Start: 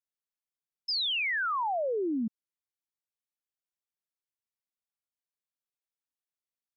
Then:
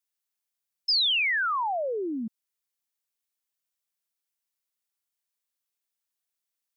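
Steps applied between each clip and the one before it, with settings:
spectral tilt +2 dB per octave
level +2.5 dB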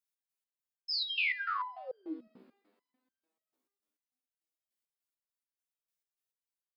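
coupled-rooms reverb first 0.82 s, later 3.1 s, from −22 dB, DRR 11.5 dB
step-sequenced resonator 6.8 Hz 64–1,600 Hz
level +2 dB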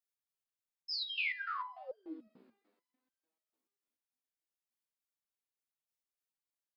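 flanger 0.97 Hz, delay 1 ms, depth 8.8 ms, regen +72%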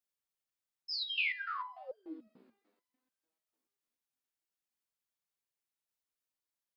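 dynamic equaliser 2,900 Hz, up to +4 dB, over −46 dBFS, Q 2.4

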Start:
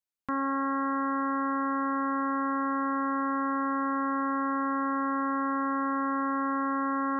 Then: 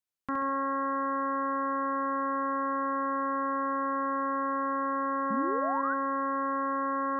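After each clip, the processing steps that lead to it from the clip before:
flutter between parallel walls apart 11.6 metres, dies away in 0.66 s
sound drawn into the spectrogram rise, 0:05.30–0:05.94, 200–1,600 Hz −32 dBFS
level −1.5 dB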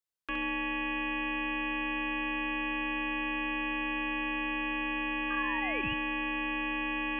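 ring modulation 1,400 Hz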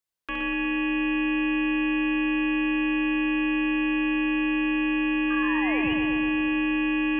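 feedback echo with a low-pass in the loop 120 ms, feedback 74%, low-pass 2,500 Hz, level −4.5 dB
level +3.5 dB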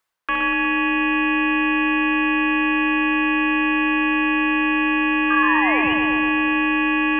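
parametric band 1,200 Hz +13 dB 2.4 octaves
reversed playback
upward compression, threshold −22 dBFS
reversed playback

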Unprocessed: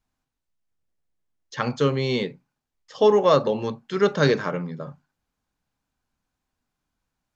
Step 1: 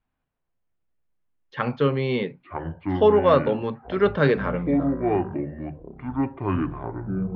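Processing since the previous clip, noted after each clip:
low-pass filter 3,100 Hz 24 dB per octave
delay with pitch and tempo change per echo 155 ms, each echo −7 semitones, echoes 3, each echo −6 dB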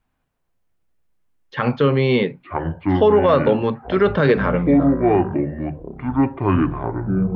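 brickwall limiter −13.5 dBFS, peak gain reduction 7.5 dB
level +7.5 dB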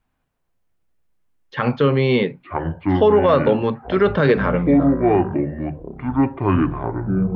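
no processing that can be heard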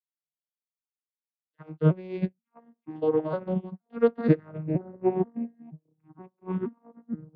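vocoder with an arpeggio as carrier minor triad, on D#3, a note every 475 ms
expander for the loud parts 2.5 to 1, over −35 dBFS
level −4 dB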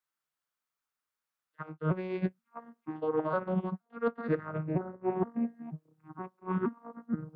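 parametric band 1,300 Hz +12 dB 1.1 octaves
reversed playback
downward compressor 16 to 1, threshold −30 dBFS, peak gain reduction 18 dB
reversed playback
level +3.5 dB

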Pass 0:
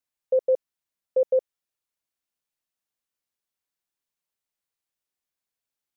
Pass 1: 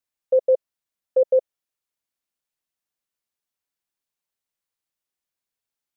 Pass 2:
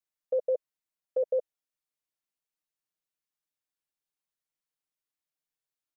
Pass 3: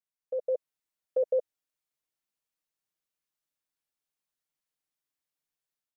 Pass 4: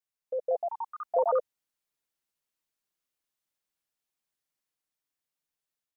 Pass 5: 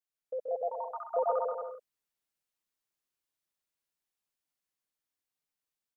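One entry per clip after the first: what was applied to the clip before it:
dynamic equaliser 590 Hz, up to +5 dB, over −34 dBFS, Q 2.2
comb filter 6.5 ms, depth 68%; level −8 dB
automatic gain control gain up to 7.5 dB; level −6.5 dB
delay with pitch and tempo change per echo 266 ms, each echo +5 semitones, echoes 3
bouncing-ball delay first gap 130 ms, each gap 0.75×, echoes 5; level −4.5 dB

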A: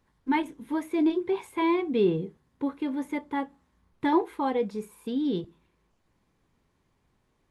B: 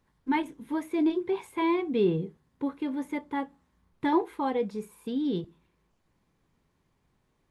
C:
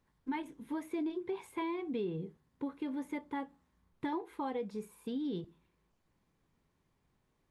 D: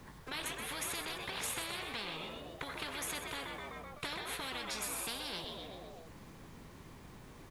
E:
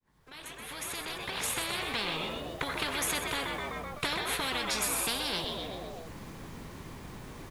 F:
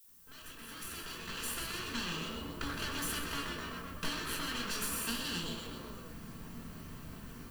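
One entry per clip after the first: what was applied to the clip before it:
parametric band 160 Hz +3 dB 0.39 octaves; level −1.5 dB
downward compressor 5 to 1, threshold −29 dBFS, peak gain reduction 10 dB; level −4.5 dB
on a send: echo with shifted repeats 127 ms, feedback 45%, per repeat +63 Hz, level −11 dB; on the sum: every bin compressed towards the loudest bin 10 to 1; level +1.5 dB
fade in at the beginning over 2.09 s; level +8.5 dB
lower of the sound and its delayed copy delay 0.67 ms; background noise violet −55 dBFS; rectangular room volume 250 cubic metres, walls furnished, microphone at 1.6 metres; level −6.5 dB

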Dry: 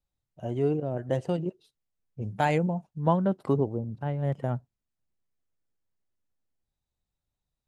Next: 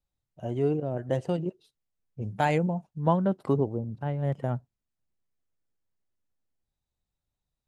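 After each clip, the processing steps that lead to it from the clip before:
no processing that can be heard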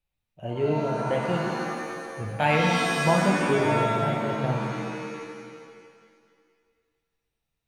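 graphic EQ with 15 bands 250 Hz −4 dB, 2,500 Hz +10 dB, 6,300 Hz −8 dB
reverb with rising layers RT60 1.9 s, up +7 semitones, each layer −2 dB, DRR 0.5 dB

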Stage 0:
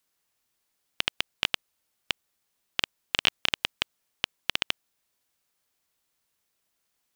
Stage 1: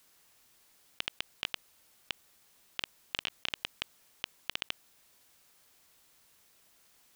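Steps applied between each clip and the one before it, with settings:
compressor whose output falls as the input rises −37 dBFS, ratio −1
level +1.5 dB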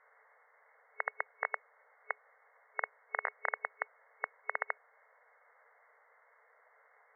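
brick-wall band-pass 430–2,200 Hz
level +9.5 dB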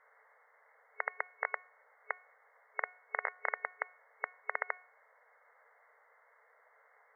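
hum removal 364.7 Hz, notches 37

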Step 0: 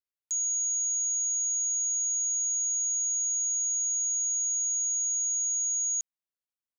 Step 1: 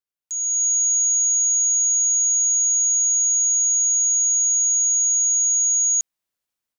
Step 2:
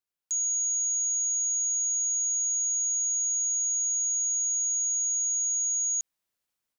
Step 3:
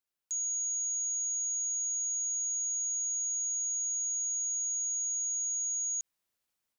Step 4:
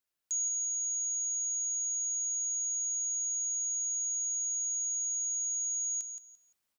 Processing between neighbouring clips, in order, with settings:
automatic gain control gain up to 10 dB
brickwall limiter −24.5 dBFS, peak gain reduction 9 dB
brickwall limiter −30 dBFS, peak gain reduction 5.5 dB
repeating echo 172 ms, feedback 21%, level −9 dB; level +1.5 dB

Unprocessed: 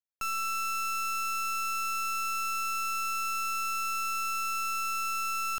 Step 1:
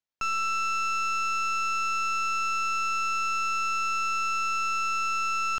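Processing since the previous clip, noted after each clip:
drawn EQ curve 3,100 Hz 0 dB, 6,500 Hz −3 dB, 9,900 Hz −22 dB
level +4.5 dB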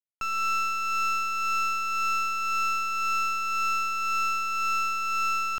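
log-companded quantiser 4 bits
amplitude tremolo 1.9 Hz, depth 34%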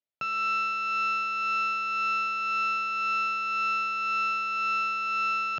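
loudspeaker in its box 130–4,500 Hz, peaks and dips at 140 Hz +10 dB, 600 Hz +8 dB, 1,100 Hz −9 dB
level +1.5 dB

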